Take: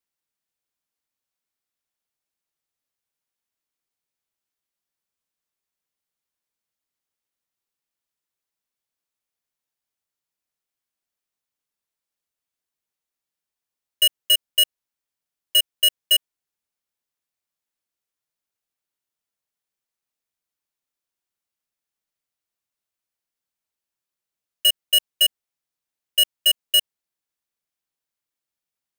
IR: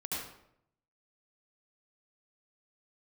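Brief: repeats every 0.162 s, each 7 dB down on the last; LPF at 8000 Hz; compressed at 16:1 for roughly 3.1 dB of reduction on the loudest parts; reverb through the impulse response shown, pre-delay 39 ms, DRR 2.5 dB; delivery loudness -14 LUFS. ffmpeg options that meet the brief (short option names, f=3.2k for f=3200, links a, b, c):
-filter_complex "[0:a]lowpass=8k,acompressor=threshold=-17dB:ratio=16,aecho=1:1:162|324|486|648|810:0.447|0.201|0.0905|0.0407|0.0183,asplit=2[a][b];[1:a]atrim=start_sample=2205,adelay=39[c];[b][c]afir=irnorm=-1:irlink=0,volume=-5.5dB[d];[a][d]amix=inputs=2:normalize=0,volume=7.5dB"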